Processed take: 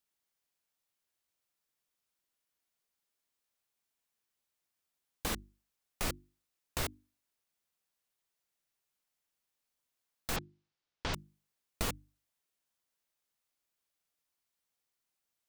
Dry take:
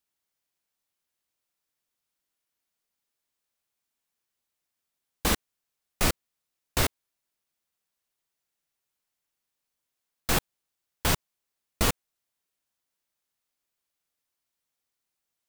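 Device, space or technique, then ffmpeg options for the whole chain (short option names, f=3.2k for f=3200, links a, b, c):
de-esser from a sidechain: -filter_complex "[0:a]asplit=2[a][b];[b]highpass=5.9k,apad=whole_len=682790[c];[a][c]sidechaincompress=threshold=-38dB:ratio=3:attack=4.8:release=70,asettb=1/sr,asplit=3[d][e][f];[d]atrim=end=10.364[g];[e]atrim=start=10.36:end=11.14,asetpts=PTS-STARTPTS,afade=t=in:d=0.004:c=qsin,afade=t=out:st=0.776:d=0.004:c=qsin,lowpass=f=5.6k:w=0.5412,lowpass=f=5.6k:w=1.3066[h];[f]atrim=start=11.136[i];[g][h]acrossfade=d=0.004:c1=hsin:c2=qsin[j];[j][i]acrossfade=d=0.004:c1=qsin:c2=hsin,bandreject=f=50:t=h:w=6,bandreject=f=100:t=h:w=6,bandreject=f=150:t=h:w=6,bandreject=f=200:t=h:w=6,bandreject=f=250:t=h:w=6,bandreject=f=300:t=h:w=6,bandreject=f=350:t=h:w=6,volume=-2dB"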